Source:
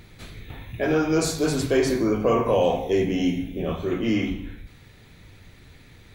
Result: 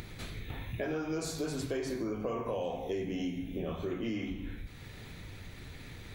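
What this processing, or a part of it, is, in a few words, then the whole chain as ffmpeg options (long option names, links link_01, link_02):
upward and downward compression: -af "acompressor=mode=upward:threshold=-38dB:ratio=2.5,acompressor=threshold=-32dB:ratio=5,volume=-1.5dB"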